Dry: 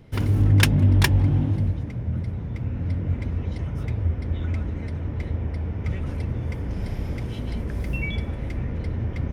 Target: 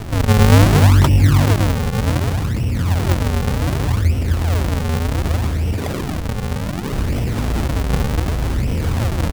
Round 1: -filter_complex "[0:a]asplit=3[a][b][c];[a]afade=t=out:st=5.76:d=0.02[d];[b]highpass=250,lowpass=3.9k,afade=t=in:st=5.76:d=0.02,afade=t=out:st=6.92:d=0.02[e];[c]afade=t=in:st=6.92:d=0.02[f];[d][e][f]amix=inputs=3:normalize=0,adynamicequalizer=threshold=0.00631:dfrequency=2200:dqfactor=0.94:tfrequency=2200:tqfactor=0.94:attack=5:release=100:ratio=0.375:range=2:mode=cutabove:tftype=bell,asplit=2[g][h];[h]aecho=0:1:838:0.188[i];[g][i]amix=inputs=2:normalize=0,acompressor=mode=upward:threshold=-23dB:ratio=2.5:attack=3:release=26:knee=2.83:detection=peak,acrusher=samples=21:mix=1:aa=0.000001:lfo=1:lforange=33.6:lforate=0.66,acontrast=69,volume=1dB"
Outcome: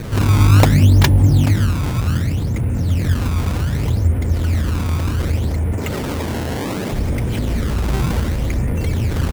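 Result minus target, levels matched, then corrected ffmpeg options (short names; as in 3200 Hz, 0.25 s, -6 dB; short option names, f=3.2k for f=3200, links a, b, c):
decimation with a swept rate: distortion -9 dB
-filter_complex "[0:a]asplit=3[a][b][c];[a]afade=t=out:st=5.76:d=0.02[d];[b]highpass=250,lowpass=3.9k,afade=t=in:st=5.76:d=0.02,afade=t=out:st=6.92:d=0.02[e];[c]afade=t=in:st=6.92:d=0.02[f];[d][e][f]amix=inputs=3:normalize=0,adynamicequalizer=threshold=0.00631:dfrequency=2200:dqfactor=0.94:tfrequency=2200:tqfactor=0.94:attack=5:release=100:ratio=0.375:range=2:mode=cutabove:tftype=bell,asplit=2[g][h];[h]aecho=0:1:838:0.188[i];[g][i]amix=inputs=2:normalize=0,acompressor=mode=upward:threshold=-23dB:ratio=2.5:attack=3:release=26:knee=2.83:detection=peak,acrusher=samples=77:mix=1:aa=0.000001:lfo=1:lforange=123:lforate=0.66,acontrast=69,volume=1dB"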